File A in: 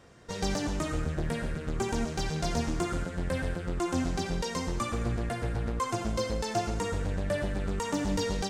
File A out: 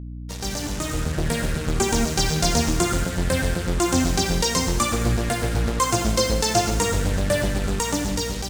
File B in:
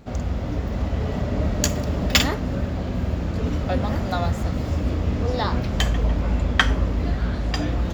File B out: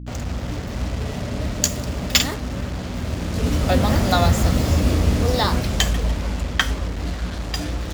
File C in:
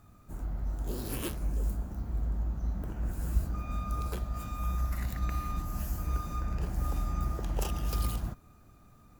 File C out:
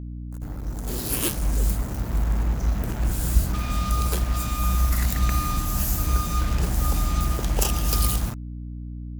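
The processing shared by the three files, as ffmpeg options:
ffmpeg -i in.wav -af "highshelf=frequency=3900:gain=7.5,dynaudnorm=framelen=410:gausssize=5:maxgain=12dB,acrusher=bits=4:mix=0:aa=0.5,equalizer=frequency=6900:width_type=o:width=2.1:gain=2.5,aeval=exprs='val(0)+0.0316*(sin(2*PI*60*n/s)+sin(2*PI*2*60*n/s)/2+sin(2*PI*3*60*n/s)/3+sin(2*PI*4*60*n/s)/4+sin(2*PI*5*60*n/s)/5)':channel_layout=same,volume=-2.5dB" out.wav

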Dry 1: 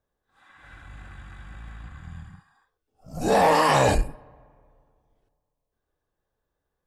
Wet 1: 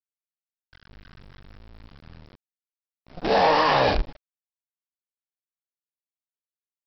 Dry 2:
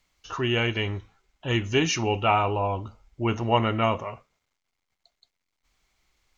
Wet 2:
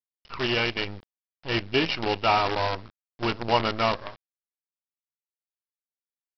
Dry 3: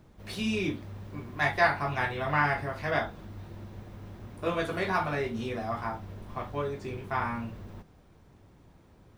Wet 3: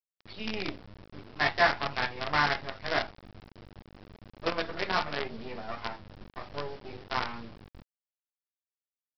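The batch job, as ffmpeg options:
ffmpeg -i in.wav -af "afftdn=noise_reduction=19:noise_floor=-39,equalizer=frequency=120:width=0.7:gain=-6,aresample=11025,acrusher=bits=5:dc=4:mix=0:aa=0.000001,aresample=44100" out.wav

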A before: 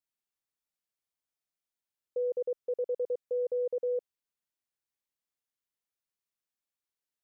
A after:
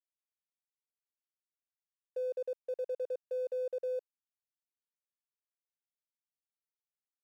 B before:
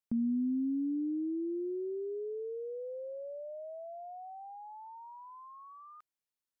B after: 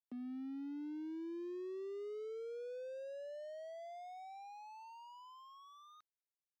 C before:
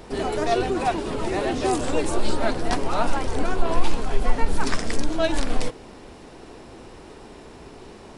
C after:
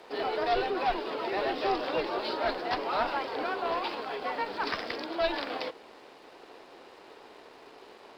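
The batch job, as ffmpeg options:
ffmpeg -i in.wav -af "highpass=430,aresample=11025,aeval=exprs='clip(val(0),-1,0.0668)':channel_layout=same,aresample=44100,afreqshift=14,aeval=exprs='sgn(val(0))*max(abs(val(0))-0.00141,0)':channel_layout=same,volume=-2dB" out.wav

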